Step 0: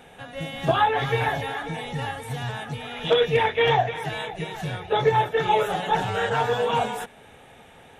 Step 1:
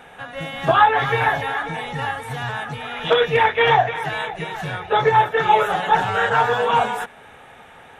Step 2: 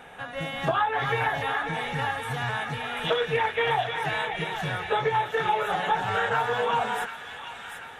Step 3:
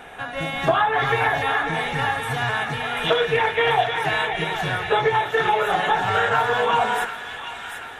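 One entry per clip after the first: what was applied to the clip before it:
peaking EQ 1.3 kHz +9.5 dB 1.7 oct
compression 4:1, threshold -20 dBFS, peak gain reduction 10 dB; on a send: feedback echo behind a high-pass 739 ms, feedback 55%, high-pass 1.8 kHz, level -6 dB; on the sum: trim -2.5 dB
reverberation RT60 0.95 s, pre-delay 3 ms, DRR 8.5 dB; trim +5.5 dB

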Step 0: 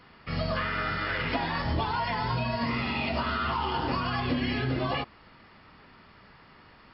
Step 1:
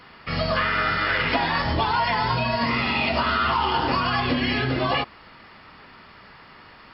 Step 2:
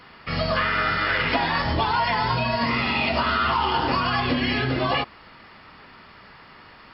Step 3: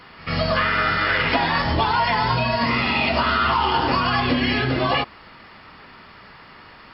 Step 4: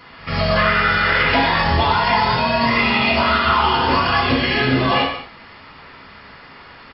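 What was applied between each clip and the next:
bass shelf 410 Hz -6 dB; trim +8.5 dB
no audible change
pre-echo 97 ms -19.5 dB; trim +2.5 dB
gated-style reverb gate 270 ms falling, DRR -1.5 dB; resampled via 16 kHz

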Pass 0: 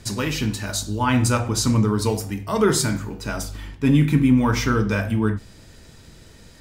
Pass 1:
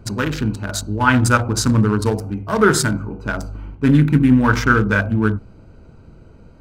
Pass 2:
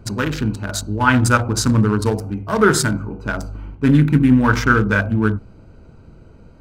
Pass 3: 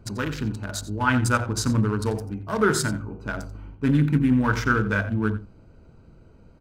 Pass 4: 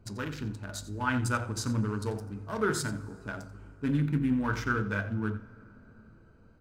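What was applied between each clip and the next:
local Wiener filter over 25 samples; peaking EQ 1.5 kHz +11.5 dB 0.48 oct; trim +3.5 dB
no audible change
echo from a far wall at 15 m, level -14 dB; trim -7 dB
flange 0.59 Hz, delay 9.9 ms, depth 2.4 ms, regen -76%; plate-style reverb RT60 4.5 s, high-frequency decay 0.5×, DRR 19.5 dB; trim -3.5 dB

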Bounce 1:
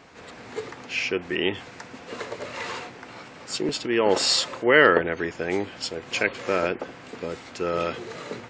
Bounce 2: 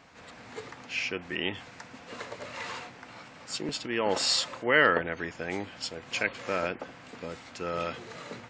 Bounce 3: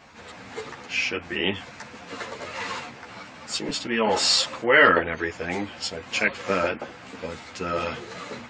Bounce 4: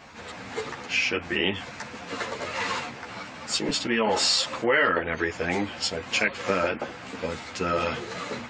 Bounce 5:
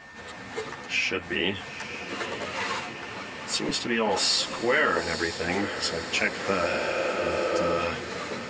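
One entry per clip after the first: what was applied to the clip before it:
peaking EQ 390 Hz -7 dB 0.59 oct; trim -4.5 dB
three-phase chorus; trim +9 dB
compression 3:1, threshold -24 dBFS, peak gain reduction 10 dB; trim +3 dB
echo that smears into a reverb 917 ms, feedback 64%, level -10.5 dB; spectral replace 6.73–7.71 s, 260–4200 Hz both; whistle 1.8 kHz -45 dBFS; trim -1.5 dB

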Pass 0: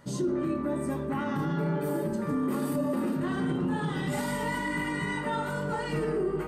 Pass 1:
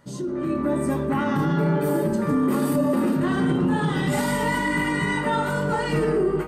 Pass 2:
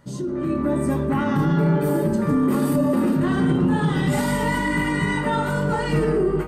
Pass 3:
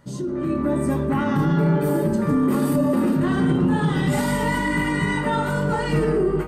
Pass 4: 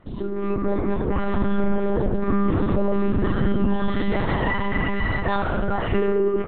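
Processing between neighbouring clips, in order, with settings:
level rider gain up to 9 dB; trim -1.5 dB
bass shelf 150 Hz +7.5 dB
no audible change
monotone LPC vocoder at 8 kHz 200 Hz

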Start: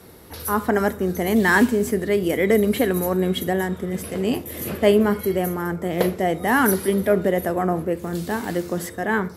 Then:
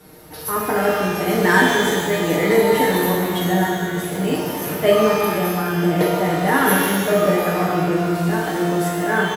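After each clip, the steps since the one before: comb 6.5 ms, depth 69%; pitch-shifted reverb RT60 1.8 s, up +12 st, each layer -8 dB, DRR -3 dB; trim -3 dB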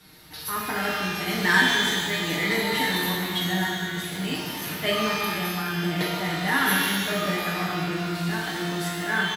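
graphic EQ 500/2000/4000 Hz -10/+4/+10 dB; trim -6.5 dB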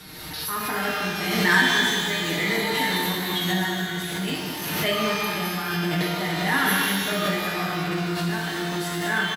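delay 194 ms -8 dB; swell ahead of each attack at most 33 dB/s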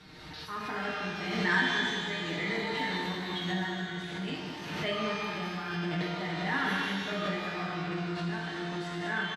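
distance through air 120 m; trim -7.5 dB

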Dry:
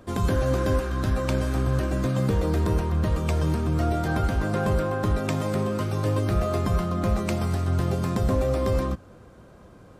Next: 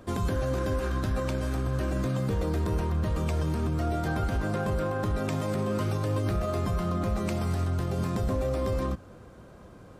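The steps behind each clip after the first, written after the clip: peak limiter -20.5 dBFS, peak gain reduction 6.5 dB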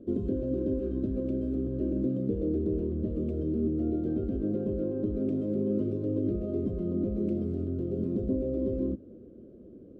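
FFT filter 160 Hz 0 dB, 230 Hz +13 dB, 380 Hz +13 dB, 620 Hz -1 dB, 880 Hz -27 dB, 1.3 kHz -19 dB, 1.9 kHz -23 dB, 3 kHz -15 dB, 5.1 kHz -23 dB, 14 kHz -29 dB; trim -7.5 dB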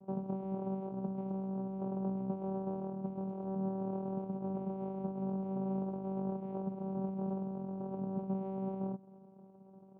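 vocoder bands 4, saw 192 Hz; trim -7 dB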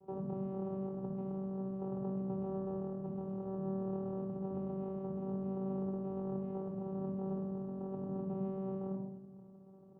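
simulated room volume 3700 m³, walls furnished, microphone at 4.1 m; trim -4.5 dB

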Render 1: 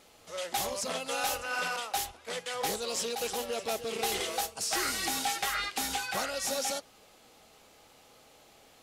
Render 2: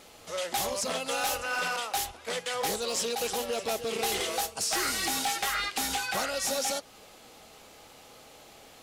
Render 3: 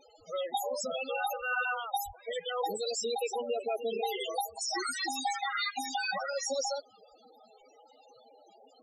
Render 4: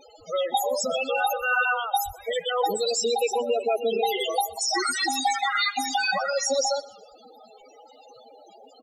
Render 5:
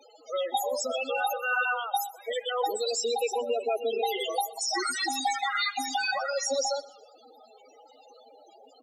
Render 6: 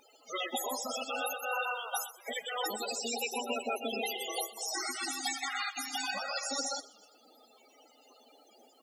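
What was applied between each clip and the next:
in parallel at +0.5 dB: compression 8:1, threshold -39 dBFS, peak gain reduction 12 dB; on the sum: overload inside the chain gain 24 dB
treble shelf 2.9 kHz +7 dB; loudest bins only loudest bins 8
feedback delay 124 ms, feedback 36%, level -20.5 dB; trim +8.5 dB
steep high-pass 240 Hz 72 dB/octave; trim -4 dB
spectral peaks clipped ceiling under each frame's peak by 30 dB; band-stop 3.9 kHz, Q 6; trim -5 dB

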